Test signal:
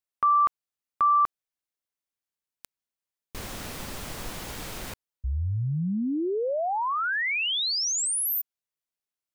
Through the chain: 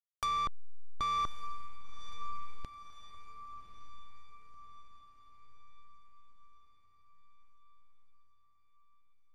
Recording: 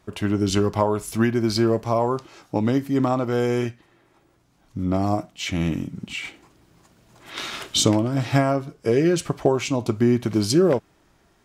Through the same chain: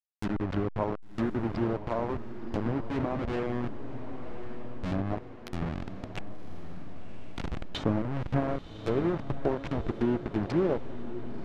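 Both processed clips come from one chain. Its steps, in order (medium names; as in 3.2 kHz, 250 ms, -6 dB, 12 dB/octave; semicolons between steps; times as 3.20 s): send-on-delta sampling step -17.5 dBFS; low-pass that closes with the level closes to 1.4 kHz, closed at -18 dBFS; echo that smears into a reverb 1090 ms, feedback 54%, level -11 dB; trim -8 dB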